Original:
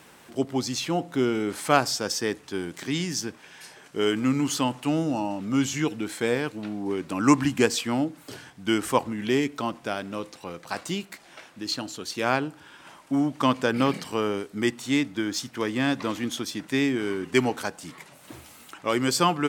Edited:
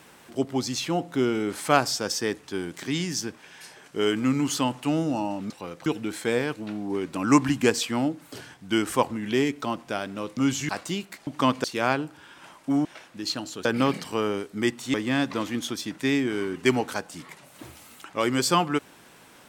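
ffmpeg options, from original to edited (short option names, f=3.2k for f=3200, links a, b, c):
-filter_complex "[0:a]asplit=10[a][b][c][d][e][f][g][h][i][j];[a]atrim=end=5.502[k];[b]atrim=start=10.328:end=10.692[l];[c]atrim=start=5.818:end=10.332[m];[d]atrim=start=5.498:end=5.822[n];[e]atrim=start=10.688:end=11.272[o];[f]atrim=start=13.278:end=13.652[p];[g]atrim=start=12.068:end=13.282[q];[h]atrim=start=11.268:end=12.072[r];[i]atrim=start=13.648:end=14.942[s];[j]atrim=start=15.628[t];[k][l]acrossfade=d=0.004:c1=hsin:c2=hsin[u];[u][m]acrossfade=d=0.004:c1=hsin:c2=hsin[v];[v][n]acrossfade=d=0.004:c1=hsin:c2=hsin[w];[w][o]acrossfade=d=0.004:c1=hsin:c2=hsin[x];[x][p]acrossfade=d=0.004:c1=hsin:c2=hsin[y];[y][q]acrossfade=d=0.004:c1=hsin:c2=hsin[z];[z][r]acrossfade=d=0.004:c1=hsin:c2=hsin[aa];[aa][s]acrossfade=d=0.004:c1=hsin:c2=hsin[ab];[ab][t]acrossfade=d=0.004:c1=hsin:c2=hsin"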